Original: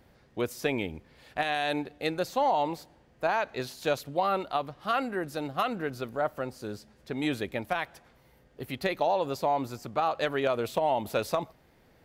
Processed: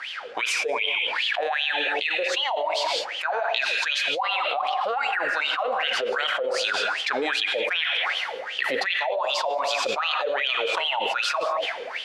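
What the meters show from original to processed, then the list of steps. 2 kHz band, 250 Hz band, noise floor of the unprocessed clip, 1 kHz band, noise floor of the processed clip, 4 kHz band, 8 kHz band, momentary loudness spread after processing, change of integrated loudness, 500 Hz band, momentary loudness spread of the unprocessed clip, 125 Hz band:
+12.5 dB, -9.0 dB, -62 dBFS, +3.5 dB, -34 dBFS, +16.0 dB, +10.0 dB, 3 LU, +6.5 dB, +2.5 dB, 11 LU, under -20 dB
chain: frequency weighting ITU-R 468; level rider gain up to 6.5 dB; wah-wah 2.6 Hz 460–3200 Hz, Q 12; gated-style reverb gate 230 ms flat, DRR 11.5 dB; level flattener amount 100%

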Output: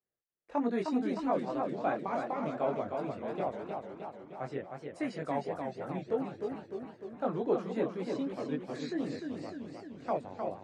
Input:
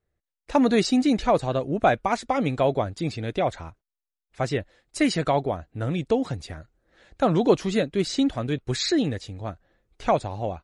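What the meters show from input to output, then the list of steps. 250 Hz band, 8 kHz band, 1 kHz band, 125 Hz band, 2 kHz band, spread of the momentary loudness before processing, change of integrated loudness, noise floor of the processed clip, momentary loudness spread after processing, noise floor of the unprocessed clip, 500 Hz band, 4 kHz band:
-10.5 dB, under -20 dB, -9.5 dB, -15.5 dB, -12.5 dB, 12 LU, -11.0 dB, -58 dBFS, 11 LU, under -85 dBFS, -9.0 dB, -20.5 dB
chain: chorus voices 2, 0.76 Hz, delay 21 ms, depth 1.4 ms; three-band isolator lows -22 dB, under 160 Hz, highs -14 dB, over 2.1 kHz; modulated delay 305 ms, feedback 63%, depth 143 cents, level -5 dB; trim -8 dB

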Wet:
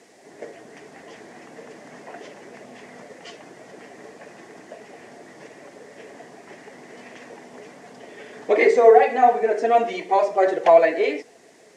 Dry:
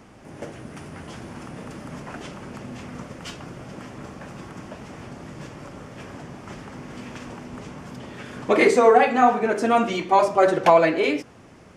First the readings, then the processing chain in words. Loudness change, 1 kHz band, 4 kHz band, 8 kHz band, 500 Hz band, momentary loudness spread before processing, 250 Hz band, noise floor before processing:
+1.0 dB, 0.0 dB, -5.0 dB, no reading, +2.0 dB, 22 LU, -7.0 dB, -48 dBFS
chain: coarse spectral quantiser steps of 15 dB; added noise violet -43 dBFS; cabinet simulation 280–7500 Hz, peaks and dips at 440 Hz +9 dB, 690 Hz +9 dB, 1.3 kHz -6 dB, 1.9 kHz +9 dB; trim -5 dB

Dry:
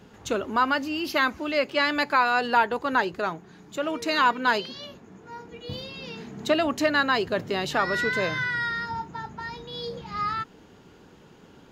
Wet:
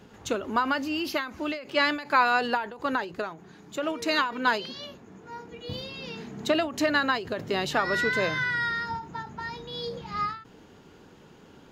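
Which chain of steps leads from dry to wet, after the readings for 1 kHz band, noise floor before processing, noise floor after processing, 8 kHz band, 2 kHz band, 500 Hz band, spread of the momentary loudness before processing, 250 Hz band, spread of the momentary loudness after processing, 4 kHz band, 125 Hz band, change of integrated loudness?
-3.0 dB, -52 dBFS, -53 dBFS, -0.5 dB, -2.0 dB, -2.5 dB, 16 LU, -1.0 dB, 14 LU, -1.5 dB, -1.5 dB, -2.5 dB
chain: hum notches 60/120/180 Hz; endings held to a fixed fall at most 120 dB/s

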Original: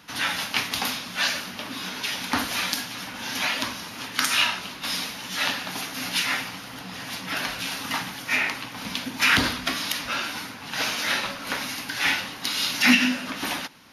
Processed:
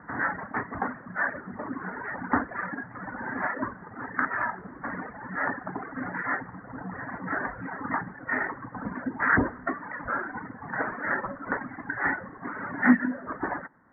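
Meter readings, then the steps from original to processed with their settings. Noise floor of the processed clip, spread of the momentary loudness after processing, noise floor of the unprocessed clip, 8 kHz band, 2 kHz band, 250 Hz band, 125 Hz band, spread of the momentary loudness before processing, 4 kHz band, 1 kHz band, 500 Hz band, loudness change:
-46 dBFS, 13 LU, -39 dBFS, under -40 dB, -3.5 dB, +0.5 dB, 0.0 dB, 12 LU, under -40 dB, +0.5 dB, +1.5 dB, -5.5 dB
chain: steep low-pass 1.9 kHz 96 dB/octave; reverb removal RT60 1.4 s; dynamic bell 380 Hz, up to +5 dB, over -49 dBFS, Q 2.4; in parallel at -2 dB: compression, threshold -38 dBFS, peak gain reduction 22 dB

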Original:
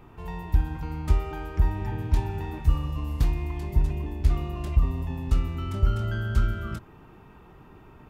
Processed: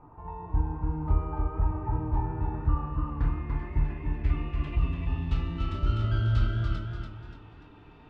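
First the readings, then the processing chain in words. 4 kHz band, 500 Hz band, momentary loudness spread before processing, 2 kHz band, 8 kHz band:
-2.0 dB, -3.5 dB, 7 LU, -3.5 dB, no reading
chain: companded quantiser 8-bit; low-pass sweep 1 kHz -> 3.8 kHz, 2.08–5.67 s; FDN reverb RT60 0.43 s, low-frequency decay 1.3×, high-frequency decay 0.75×, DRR 2.5 dB; modulated delay 291 ms, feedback 38%, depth 67 cents, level -5 dB; trim -6.5 dB

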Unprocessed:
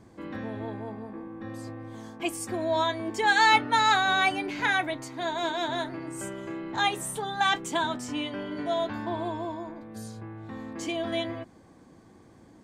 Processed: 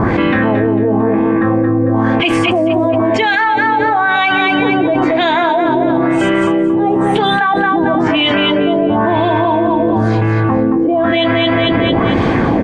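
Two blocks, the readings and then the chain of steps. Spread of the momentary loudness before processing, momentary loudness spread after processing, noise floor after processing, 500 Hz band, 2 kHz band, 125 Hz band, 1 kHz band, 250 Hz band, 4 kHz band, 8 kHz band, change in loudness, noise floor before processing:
19 LU, 1 LU, -14 dBFS, +19.5 dB, +12.5 dB, +23.5 dB, +13.0 dB, +22.5 dB, +12.0 dB, no reading, +14.5 dB, -54 dBFS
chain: LFO low-pass sine 1 Hz 370–3000 Hz; on a send: feedback delay 225 ms, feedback 32%, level -6 dB; on the sum: level flattener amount 100%

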